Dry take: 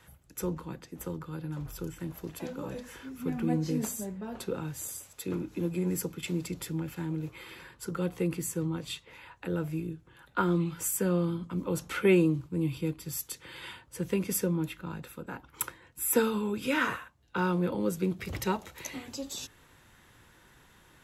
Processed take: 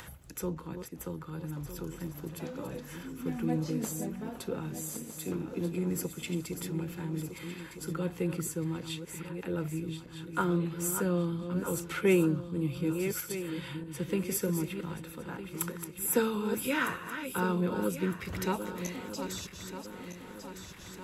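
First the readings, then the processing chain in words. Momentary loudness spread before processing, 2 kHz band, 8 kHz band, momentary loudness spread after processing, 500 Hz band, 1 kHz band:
13 LU, -1.0 dB, -1.0 dB, 12 LU, -1.0 dB, -1.0 dB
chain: backward echo that repeats 629 ms, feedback 59%, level -8.5 dB; upward compressor, threshold -36 dBFS; trim -2 dB

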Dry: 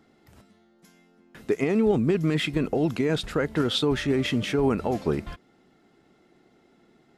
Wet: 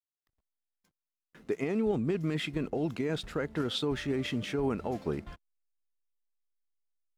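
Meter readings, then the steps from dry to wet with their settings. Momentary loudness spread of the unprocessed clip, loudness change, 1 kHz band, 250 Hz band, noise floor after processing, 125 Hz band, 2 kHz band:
7 LU, -7.5 dB, -7.5 dB, -7.5 dB, under -85 dBFS, -7.5 dB, -7.5 dB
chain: spectral noise reduction 19 dB; hysteresis with a dead band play -50 dBFS; trim -7.5 dB

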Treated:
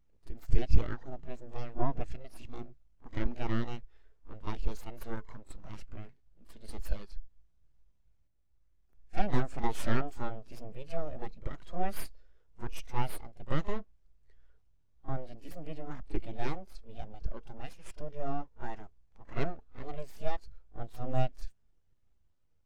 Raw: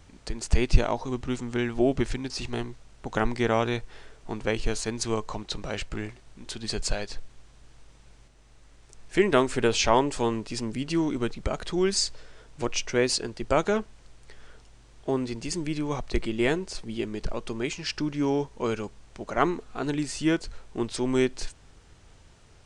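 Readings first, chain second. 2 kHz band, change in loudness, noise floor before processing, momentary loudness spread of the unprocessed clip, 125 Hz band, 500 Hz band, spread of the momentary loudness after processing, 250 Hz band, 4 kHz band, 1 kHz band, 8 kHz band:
-13.5 dB, -11.5 dB, -54 dBFS, 12 LU, -5.0 dB, -14.5 dB, 16 LU, -13.5 dB, -19.5 dB, -9.0 dB, -21.0 dB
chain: full-wave rectifier; pre-echo 39 ms -12.5 dB; overload inside the chain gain 11.5 dB; spectral contrast expander 1.5:1; trim +4 dB

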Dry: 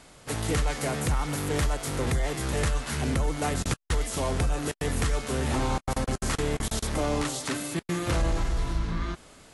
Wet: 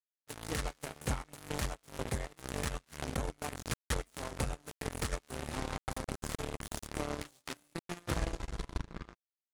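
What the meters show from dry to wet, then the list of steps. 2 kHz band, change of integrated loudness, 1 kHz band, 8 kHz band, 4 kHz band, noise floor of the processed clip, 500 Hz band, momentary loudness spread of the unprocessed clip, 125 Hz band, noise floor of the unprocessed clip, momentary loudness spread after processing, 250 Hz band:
-9.0 dB, -11.0 dB, -10.0 dB, -10.0 dB, -9.5 dB, under -85 dBFS, -11.0 dB, 3 LU, -11.5 dB, -53 dBFS, 7 LU, -11.5 dB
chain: power-law waveshaper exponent 3; transient shaper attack +6 dB, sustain -7 dB; trim -5.5 dB

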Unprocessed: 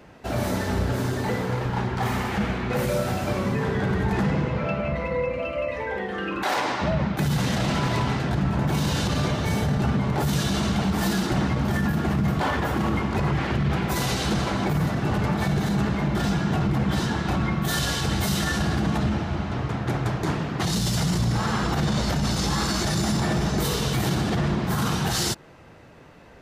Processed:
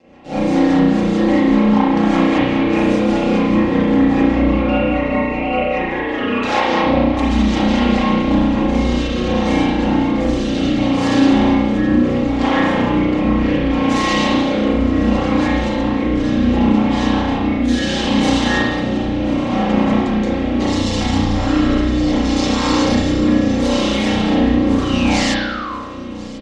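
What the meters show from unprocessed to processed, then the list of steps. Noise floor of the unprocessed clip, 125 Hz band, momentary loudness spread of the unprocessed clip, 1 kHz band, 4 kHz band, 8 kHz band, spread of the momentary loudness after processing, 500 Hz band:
-33 dBFS, +0.5 dB, 3 LU, +8.0 dB, +6.0 dB, -0.5 dB, 4 LU, +9.5 dB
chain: peaking EQ 1.5 kHz -11.5 dB 0.41 oct; level rider gain up to 8 dB; ring modulator 86 Hz; low-pass 7.2 kHz 24 dB/octave; compression, threshold -19 dBFS, peak gain reduction 6.5 dB; high-pass 150 Hz 6 dB/octave; comb 3.7 ms, depth 57%; feedback delay 1042 ms, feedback 43%, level -16 dB; rotary cabinet horn 5 Hz, later 0.7 Hz, at 7.63 s; painted sound fall, 24.84–25.73 s, 990–3100 Hz -37 dBFS; spring tank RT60 1 s, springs 33 ms, chirp 75 ms, DRR -8.5 dB; trim +1.5 dB

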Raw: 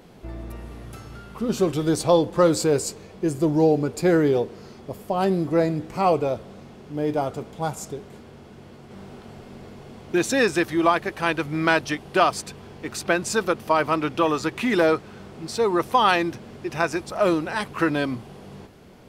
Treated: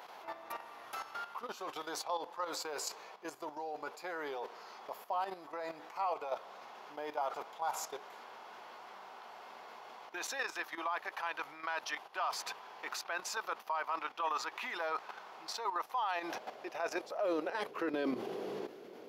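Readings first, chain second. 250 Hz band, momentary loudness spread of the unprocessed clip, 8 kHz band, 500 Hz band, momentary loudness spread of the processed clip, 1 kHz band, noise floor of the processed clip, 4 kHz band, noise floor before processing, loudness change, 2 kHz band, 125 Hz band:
-22.5 dB, 20 LU, -12.5 dB, -18.5 dB, 15 LU, -12.0 dB, -53 dBFS, -12.5 dB, -45 dBFS, -17.0 dB, -13.5 dB, under -35 dB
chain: peaking EQ 8.6 kHz -14 dB 0.38 oct; reverse; compression 6:1, threshold -29 dBFS, peak gain reduction 15.5 dB; reverse; high-pass sweep 910 Hz -> 380 Hz, 15.76–18.09 s; level held to a coarse grid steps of 11 dB; peak limiter -30 dBFS, peak gain reduction 9.5 dB; trim +3.5 dB

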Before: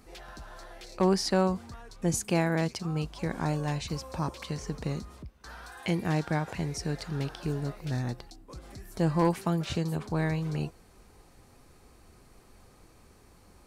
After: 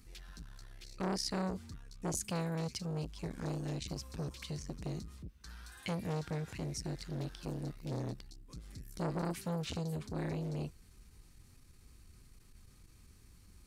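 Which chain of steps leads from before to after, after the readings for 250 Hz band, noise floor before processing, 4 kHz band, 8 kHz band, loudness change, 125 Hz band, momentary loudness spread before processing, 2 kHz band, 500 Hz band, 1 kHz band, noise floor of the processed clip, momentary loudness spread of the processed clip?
-9.5 dB, -58 dBFS, -6.0 dB, -5.5 dB, -9.0 dB, -8.0 dB, 20 LU, -11.5 dB, -10.0 dB, -11.0 dB, -61 dBFS, 15 LU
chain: amplifier tone stack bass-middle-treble 6-0-2; transformer saturation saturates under 800 Hz; trim +13 dB

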